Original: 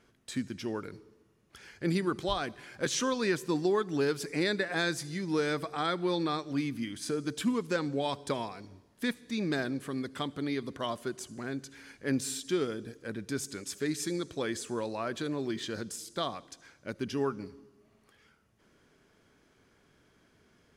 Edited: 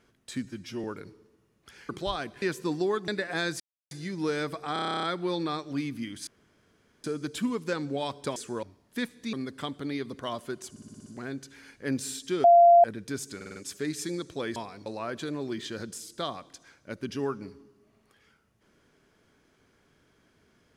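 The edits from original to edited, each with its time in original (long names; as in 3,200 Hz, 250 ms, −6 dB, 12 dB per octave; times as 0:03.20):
0:00.45–0:00.71: time-stretch 1.5×
0:01.76–0:02.11: remove
0:02.64–0:03.26: remove
0:03.92–0:04.49: remove
0:05.01: splice in silence 0.31 s
0:05.83: stutter 0.03 s, 11 plays
0:07.07: splice in room tone 0.77 s
0:08.39–0:08.69: swap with 0:14.57–0:14.84
0:09.39–0:09.90: remove
0:11.27: stutter 0.06 s, 7 plays
0:12.65–0:13.05: beep over 690 Hz −12.5 dBFS
0:13.57: stutter 0.05 s, 5 plays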